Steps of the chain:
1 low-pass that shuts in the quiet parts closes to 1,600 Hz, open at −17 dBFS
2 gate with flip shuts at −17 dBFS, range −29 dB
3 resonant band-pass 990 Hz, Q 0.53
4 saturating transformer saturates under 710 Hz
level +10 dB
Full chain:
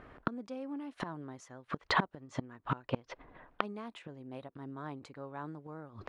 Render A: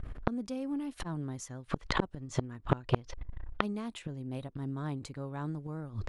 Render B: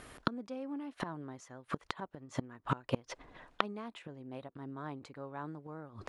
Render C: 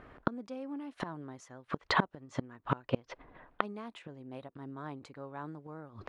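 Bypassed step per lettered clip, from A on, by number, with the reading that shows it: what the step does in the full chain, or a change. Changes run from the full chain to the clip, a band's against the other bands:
3, 8 kHz band +7.5 dB
1, 2 kHz band −4.5 dB
4, 500 Hz band +1.5 dB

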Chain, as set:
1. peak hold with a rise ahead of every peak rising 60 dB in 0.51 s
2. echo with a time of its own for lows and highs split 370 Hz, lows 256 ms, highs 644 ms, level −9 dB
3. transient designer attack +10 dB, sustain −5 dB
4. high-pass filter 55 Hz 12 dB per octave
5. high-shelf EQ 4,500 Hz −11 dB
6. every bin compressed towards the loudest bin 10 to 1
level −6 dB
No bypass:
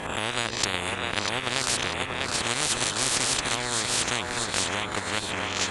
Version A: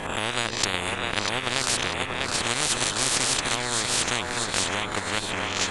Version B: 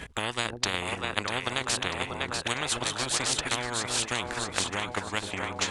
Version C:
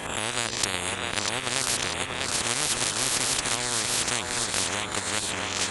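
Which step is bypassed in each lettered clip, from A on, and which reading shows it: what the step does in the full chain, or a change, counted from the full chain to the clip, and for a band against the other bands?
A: 4, change in integrated loudness +1.0 LU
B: 1, 8 kHz band −2.0 dB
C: 5, 8 kHz band +3.5 dB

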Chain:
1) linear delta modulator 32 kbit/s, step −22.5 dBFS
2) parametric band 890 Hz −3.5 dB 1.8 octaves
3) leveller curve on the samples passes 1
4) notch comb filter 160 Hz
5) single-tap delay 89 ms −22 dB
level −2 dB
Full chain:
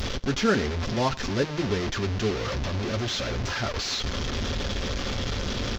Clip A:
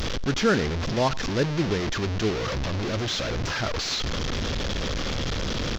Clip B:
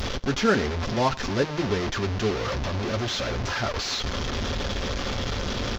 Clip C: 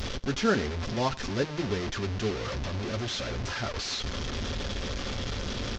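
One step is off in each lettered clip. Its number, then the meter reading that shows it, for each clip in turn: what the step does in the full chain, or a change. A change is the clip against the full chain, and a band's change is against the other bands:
4, change in integrated loudness +1.0 LU
2, 1 kHz band +2.5 dB
3, change in crest factor +2.0 dB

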